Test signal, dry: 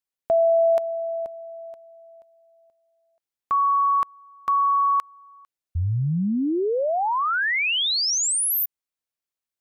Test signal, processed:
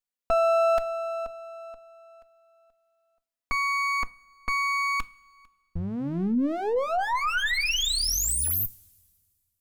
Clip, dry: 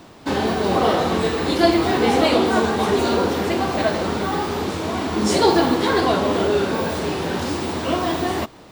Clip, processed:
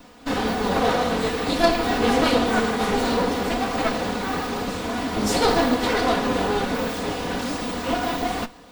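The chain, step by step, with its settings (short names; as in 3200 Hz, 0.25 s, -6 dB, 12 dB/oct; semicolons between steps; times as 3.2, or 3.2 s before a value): minimum comb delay 4.1 ms; two-slope reverb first 0.32 s, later 1.9 s, from -18 dB, DRR 14.5 dB; gain -1.5 dB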